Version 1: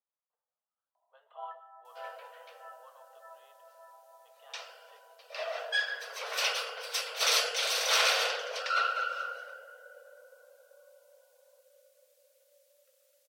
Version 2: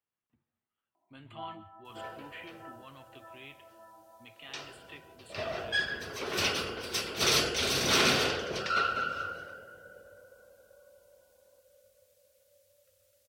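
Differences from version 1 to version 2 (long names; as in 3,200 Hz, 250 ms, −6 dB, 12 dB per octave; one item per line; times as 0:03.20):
speech: remove moving average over 19 samples
master: remove Butterworth high-pass 470 Hz 96 dB per octave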